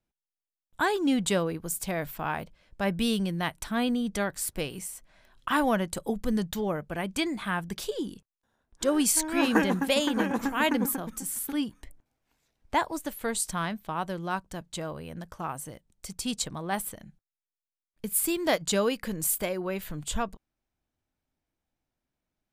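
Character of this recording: noise floor -93 dBFS; spectral tilt -4.0 dB/octave

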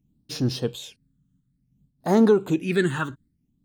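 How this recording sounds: phasing stages 8, 0.58 Hz, lowest notch 670–2600 Hz; random flutter of the level

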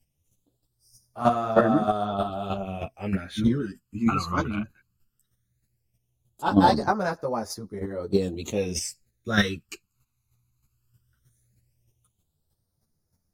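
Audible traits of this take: phasing stages 12, 0.17 Hz, lowest notch 560–2900 Hz; chopped level 3.2 Hz, depth 60%, duty 10%; a shimmering, thickened sound

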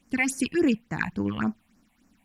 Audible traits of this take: phasing stages 6, 3.5 Hz, lowest notch 350–3500 Hz

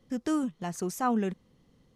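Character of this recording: noise floor -67 dBFS; spectral tilt -5.5 dB/octave

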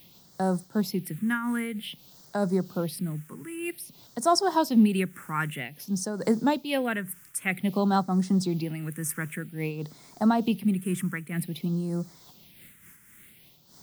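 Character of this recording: a quantiser's noise floor 8-bit, dither triangular; phasing stages 4, 0.52 Hz, lowest notch 680–2700 Hz; random flutter of the level

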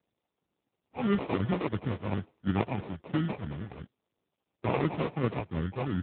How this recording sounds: phasing stages 2, 2.9 Hz, lowest notch 220–1100 Hz; aliases and images of a low sample rate 1.6 kHz, jitter 0%; AMR-NB

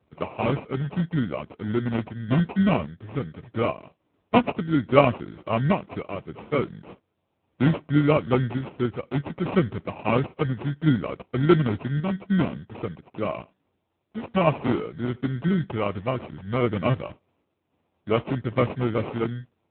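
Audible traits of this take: aliases and images of a low sample rate 1.7 kHz, jitter 0%; random-step tremolo; AMR-NB

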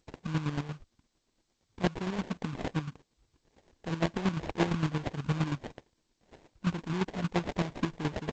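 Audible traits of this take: aliases and images of a low sample rate 1.3 kHz, jitter 20%; chopped level 8.7 Hz, depth 65%, duty 30%; G.722

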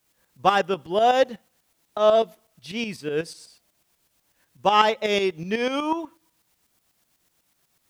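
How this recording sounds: a quantiser's noise floor 12-bit, dither triangular; tremolo saw up 8.1 Hz, depth 65%

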